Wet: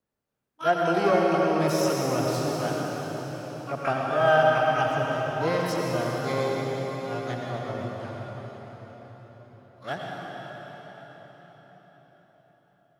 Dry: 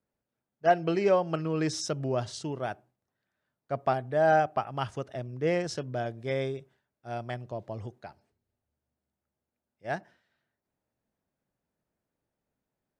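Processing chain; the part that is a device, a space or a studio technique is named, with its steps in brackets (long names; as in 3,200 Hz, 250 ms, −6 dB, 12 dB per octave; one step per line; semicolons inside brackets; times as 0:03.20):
shimmer-style reverb (pitch-shifted copies added +12 semitones −7 dB; convolution reverb RT60 5.4 s, pre-delay 76 ms, DRR −2.5 dB)
level −1 dB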